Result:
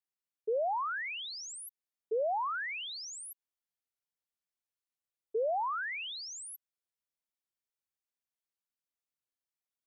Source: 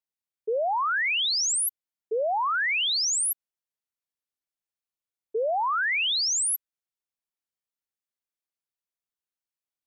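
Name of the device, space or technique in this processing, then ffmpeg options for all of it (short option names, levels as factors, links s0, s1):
de-esser from a sidechain: -filter_complex "[0:a]asplit=2[s0][s1];[s1]highpass=f=5600:p=1,apad=whole_len=435080[s2];[s0][s2]sidechaincompress=threshold=0.00891:ratio=8:attack=3.6:release=86,volume=0.596"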